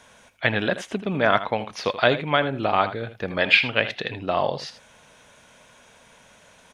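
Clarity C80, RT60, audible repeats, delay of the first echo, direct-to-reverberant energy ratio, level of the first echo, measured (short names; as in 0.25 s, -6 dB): none, none, 1, 80 ms, none, -13.0 dB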